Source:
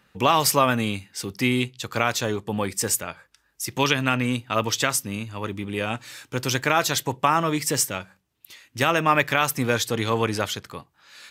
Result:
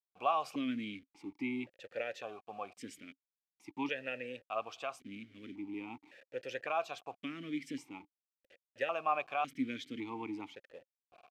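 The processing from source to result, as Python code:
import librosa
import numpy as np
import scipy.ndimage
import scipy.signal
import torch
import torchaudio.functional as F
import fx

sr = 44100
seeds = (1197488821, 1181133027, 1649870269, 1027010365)

y = fx.delta_hold(x, sr, step_db=-35.5)
y = fx.vowel_held(y, sr, hz=1.8)
y = y * librosa.db_to_amplitude(-4.5)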